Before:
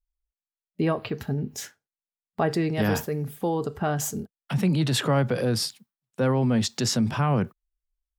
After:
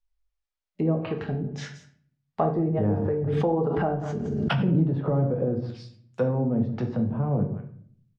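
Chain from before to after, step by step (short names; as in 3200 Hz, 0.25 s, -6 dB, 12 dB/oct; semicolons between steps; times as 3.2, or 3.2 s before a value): low shelf 460 Hz +11 dB; echo 0.178 s -20 dB; treble ducked by the level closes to 410 Hz, closed at -14 dBFS; three-band isolator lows -15 dB, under 540 Hz, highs -23 dB, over 6700 Hz; shoebox room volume 70 m³, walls mixed, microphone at 0.55 m; 2.65–5.01 backwards sustainer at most 22 dB/s; gain +2 dB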